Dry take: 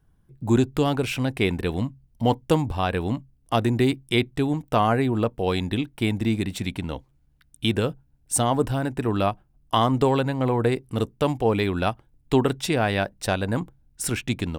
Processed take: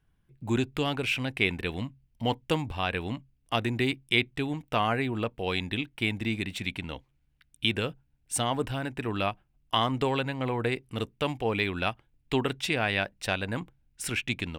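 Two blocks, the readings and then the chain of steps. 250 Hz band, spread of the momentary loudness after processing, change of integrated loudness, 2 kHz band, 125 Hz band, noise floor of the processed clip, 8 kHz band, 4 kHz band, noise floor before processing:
-8.0 dB, 9 LU, -5.5 dB, +1.0 dB, -8.0 dB, -70 dBFS, -7.0 dB, 0.0 dB, -62 dBFS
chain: bell 2500 Hz +11 dB 1.4 oct; gain -8 dB

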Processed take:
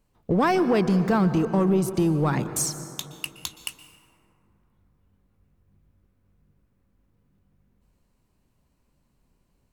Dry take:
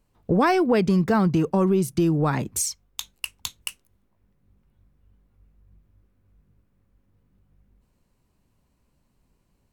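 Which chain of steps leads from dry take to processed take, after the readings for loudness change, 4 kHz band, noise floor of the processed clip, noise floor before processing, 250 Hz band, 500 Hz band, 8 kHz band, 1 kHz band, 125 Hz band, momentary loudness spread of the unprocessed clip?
-1.0 dB, -1.0 dB, -69 dBFS, -69 dBFS, -1.0 dB, -1.0 dB, -0.5 dB, -1.0 dB, -0.5 dB, 15 LU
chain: notches 50/100 Hz; in parallel at -4 dB: hard clip -18 dBFS, distortion -14 dB; on the sum: plate-style reverb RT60 2.9 s, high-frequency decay 0.35×, pre-delay 0.11 s, DRR 11.5 dB; gain -5 dB

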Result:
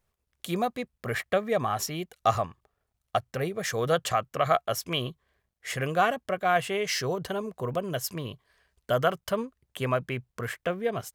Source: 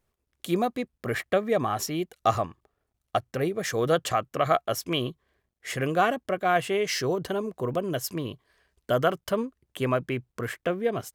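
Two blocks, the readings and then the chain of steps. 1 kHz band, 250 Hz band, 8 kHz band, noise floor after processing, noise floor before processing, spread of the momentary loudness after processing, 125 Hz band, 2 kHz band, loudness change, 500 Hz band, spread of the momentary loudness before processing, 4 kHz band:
-0.5 dB, -4.5 dB, 0.0 dB, -81 dBFS, -80 dBFS, 10 LU, -1.0 dB, 0.0 dB, -1.5 dB, -2.0 dB, 9 LU, 0.0 dB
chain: bell 310 Hz -8 dB 0.76 oct

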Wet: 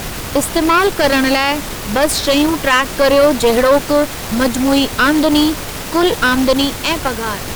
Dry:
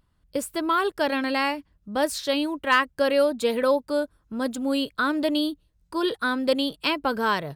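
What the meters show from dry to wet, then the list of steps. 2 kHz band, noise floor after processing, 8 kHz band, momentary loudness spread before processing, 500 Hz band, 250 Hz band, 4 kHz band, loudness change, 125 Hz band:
+10.5 dB, -26 dBFS, +17.5 dB, 9 LU, +10.5 dB, +11.5 dB, +11.5 dB, +11.0 dB, n/a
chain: ending faded out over 1.13 s; added noise pink -38 dBFS; added harmonics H 6 -17 dB, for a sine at -7.5 dBFS; maximiser +14.5 dB; gain -1 dB

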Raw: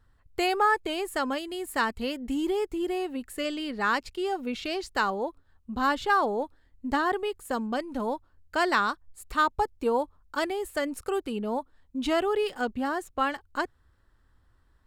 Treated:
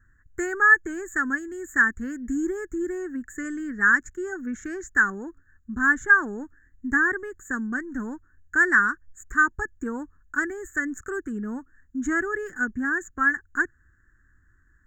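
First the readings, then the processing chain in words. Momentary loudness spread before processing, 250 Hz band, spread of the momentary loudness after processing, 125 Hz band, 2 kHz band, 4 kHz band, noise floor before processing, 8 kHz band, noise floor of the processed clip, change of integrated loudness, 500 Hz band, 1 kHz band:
9 LU, +2.0 dB, 16 LU, n/a, +11.5 dB, under -25 dB, -65 dBFS, +3.5 dB, -62 dBFS, +4.5 dB, -5.0 dB, -2.5 dB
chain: EQ curve 340 Hz 0 dB, 580 Hz -21 dB, 940 Hz -15 dB, 1700 Hz +13 dB, 2600 Hz -28 dB, 4700 Hz -30 dB, 6900 Hz +10 dB, 10000 Hz -28 dB, 15000 Hz -4 dB; gain +2.5 dB

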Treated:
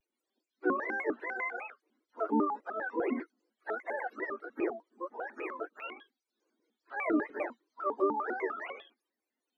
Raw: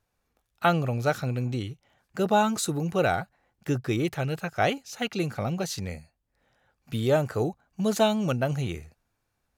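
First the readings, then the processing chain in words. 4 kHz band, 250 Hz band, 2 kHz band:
under -20 dB, -7.5 dB, -3.5 dB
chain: spectrum mirrored in octaves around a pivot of 470 Hz; steep high-pass 260 Hz 96 dB/oct; shaped vibrato square 5 Hz, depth 250 cents; gain -5 dB

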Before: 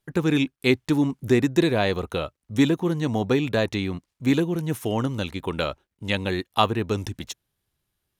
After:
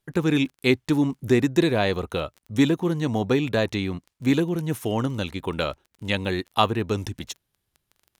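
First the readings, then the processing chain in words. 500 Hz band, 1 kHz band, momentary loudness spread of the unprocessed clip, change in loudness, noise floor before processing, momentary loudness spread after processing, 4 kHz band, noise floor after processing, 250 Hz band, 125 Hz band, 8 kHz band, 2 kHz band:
0.0 dB, 0.0 dB, 9 LU, 0.0 dB, -80 dBFS, 9 LU, 0.0 dB, -79 dBFS, 0.0 dB, 0.0 dB, 0.0 dB, 0.0 dB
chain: crackle 14/s -37 dBFS

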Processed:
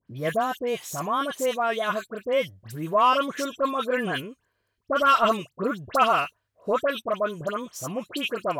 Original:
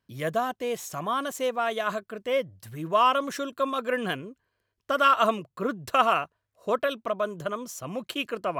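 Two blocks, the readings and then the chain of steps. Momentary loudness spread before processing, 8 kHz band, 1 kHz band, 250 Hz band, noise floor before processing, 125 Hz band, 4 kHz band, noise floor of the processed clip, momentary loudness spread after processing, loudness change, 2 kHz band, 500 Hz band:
13 LU, +2.5 dB, +1.5 dB, +2.5 dB, -80 dBFS, +2.5 dB, +1.5 dB, -77 dBFS, 12 LU, +1.5 dB, +2.0 dB, +2.0 dB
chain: soft clip -11 dBFS, distortion -23 dB; dispersion highs, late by 77 ms, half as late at 2000 Hz; gain +2.5 dB

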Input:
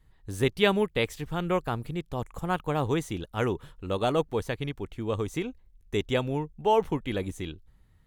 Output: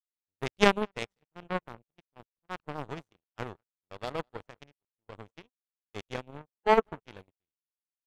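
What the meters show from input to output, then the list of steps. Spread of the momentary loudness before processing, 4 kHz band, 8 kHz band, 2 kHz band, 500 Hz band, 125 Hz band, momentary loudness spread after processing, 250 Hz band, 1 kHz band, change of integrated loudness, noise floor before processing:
11 LU, -4.5 dB, -5.0 dB, -1.5 dB, -5.0 dB, -12.0 dB, 24 LU, -7.5 dB, -2.0 dB, -2.0 dB, -60 dBFS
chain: on a send: analogue delay 0.198 s, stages 4096, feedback 35%, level -15 dB; on the sum: power-law curve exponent 3; high shelf 5900 Hz -9.5 dB; in parallel at 0 dB: level quantiser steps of 12 dB; on the sum: gate -57 dBFS, range -33 dB; harmonic-percussive split harmonic +7 dB; gain +4 dB

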